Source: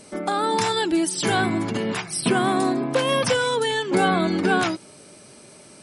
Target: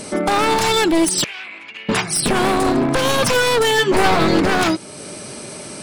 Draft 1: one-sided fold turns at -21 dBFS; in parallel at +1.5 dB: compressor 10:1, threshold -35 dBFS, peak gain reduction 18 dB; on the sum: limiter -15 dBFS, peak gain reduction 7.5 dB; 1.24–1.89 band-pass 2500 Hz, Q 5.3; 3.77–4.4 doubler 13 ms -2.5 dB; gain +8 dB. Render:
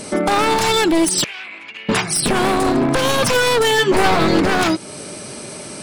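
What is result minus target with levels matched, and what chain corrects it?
compressor: peak gain reduction -7 dB
one-sided fold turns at -21 dBFS; in parallel at +1.5 dB: compressor 10:1, threshold -43 dBFS, peak gain reduction 25.5 dB; on the sum: limiter -15 dBFS, peak gain reduction 7 dB; 1.24–1.89 band-pass 2500 Hz, Q 5.3; 3.77–4.4 doubler 13 ms -2.5 dB; gain +8 dB

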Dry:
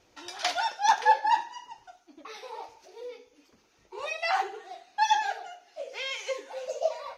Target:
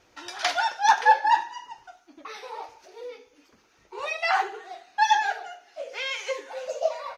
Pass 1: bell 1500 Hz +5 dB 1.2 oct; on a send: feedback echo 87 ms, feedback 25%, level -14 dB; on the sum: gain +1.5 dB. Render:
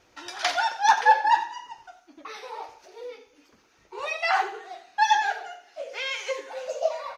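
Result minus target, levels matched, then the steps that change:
echo-to-direct +11.5 dB
change: feedback echo 87 ms, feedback 25%, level -25.5 dB

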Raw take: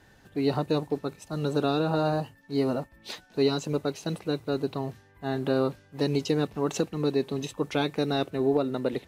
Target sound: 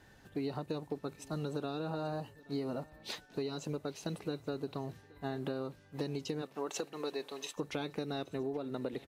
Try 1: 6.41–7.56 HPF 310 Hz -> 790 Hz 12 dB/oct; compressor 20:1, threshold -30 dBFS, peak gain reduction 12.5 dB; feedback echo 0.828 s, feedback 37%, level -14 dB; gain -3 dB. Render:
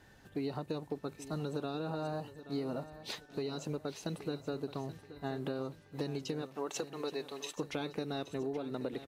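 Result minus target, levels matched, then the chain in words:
echo-to-direct +9 dB
6.41–7.56 HPF 310 Hz -> 790 Hz 12 dB/oct; compressor 20:1, threshold -30 dBFS, peak gain reduction 12.5 dB; feedback echo 0.828 s, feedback 37%, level -23 dB; gain -3 dB

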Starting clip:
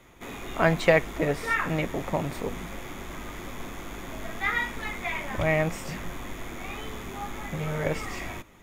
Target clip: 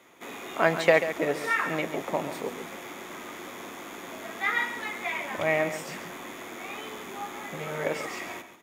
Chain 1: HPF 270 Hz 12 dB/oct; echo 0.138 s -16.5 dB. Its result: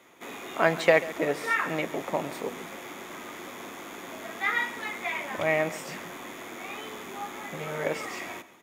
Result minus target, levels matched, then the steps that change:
echo-to-direct -6 dB
change: echo 0.138 s -10.5 dB

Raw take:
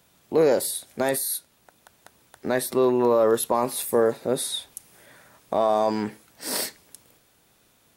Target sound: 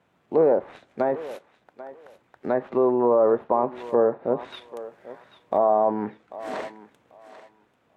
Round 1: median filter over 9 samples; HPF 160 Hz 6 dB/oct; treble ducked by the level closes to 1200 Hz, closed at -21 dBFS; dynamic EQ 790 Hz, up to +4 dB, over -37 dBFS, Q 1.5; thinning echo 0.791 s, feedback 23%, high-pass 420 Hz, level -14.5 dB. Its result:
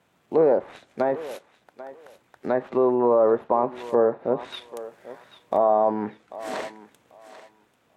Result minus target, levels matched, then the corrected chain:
8000 Hz band +7.5 dB
median filter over 9 samples; HPF 160 Hz 6 dB/oct; high shelf 4200 Hz -11.5 dB; treble ducked by the level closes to 1200 Hz, closed at -21 dBFS; dynamic EQ 790 Hz, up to +4 dB, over -37 dBFS, Q 1.5; thinning echo 0.791 s, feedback 23%, high-pass 420 Hz, level -14.5 dB

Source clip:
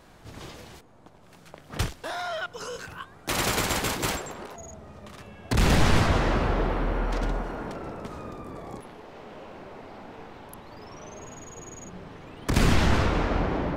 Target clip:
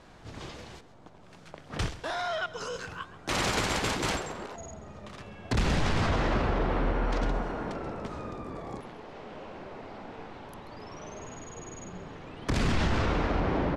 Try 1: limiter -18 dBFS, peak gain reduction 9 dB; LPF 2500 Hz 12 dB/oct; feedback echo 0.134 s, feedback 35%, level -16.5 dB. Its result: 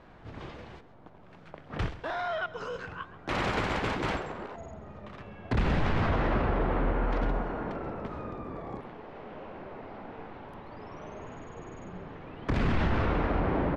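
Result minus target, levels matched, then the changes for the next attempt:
8000 Hz band -15.5 dB
change: LPF 7100 Hz 12 dB/oct

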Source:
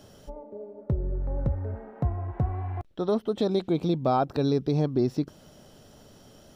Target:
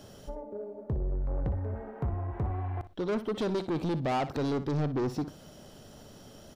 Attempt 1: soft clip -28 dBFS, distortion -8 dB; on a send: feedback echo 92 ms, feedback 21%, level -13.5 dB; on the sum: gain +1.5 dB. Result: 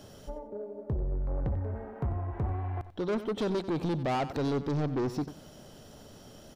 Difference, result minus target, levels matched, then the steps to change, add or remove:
echo 32 ms late
change: feedback echo 60 ms, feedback 21%, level -13.5 dB

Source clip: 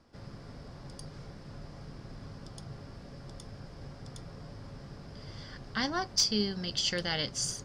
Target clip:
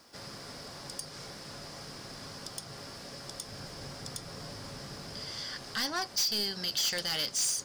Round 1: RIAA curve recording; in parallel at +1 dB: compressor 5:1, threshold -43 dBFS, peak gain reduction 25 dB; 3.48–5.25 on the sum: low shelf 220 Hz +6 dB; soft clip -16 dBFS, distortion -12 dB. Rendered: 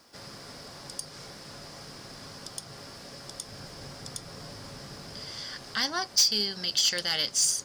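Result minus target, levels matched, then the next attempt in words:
soft clip: distortion -8 dB
RIAA curve recording; in parallel at +1 dB: compressor 5:1, threshold -43 dBFS, peak gain reduction 25 dB; 3.48–5.25 on the sum: low shelf 220 Hz +6 dB; soft clip -26.5 dBFS, distortion -4 dB

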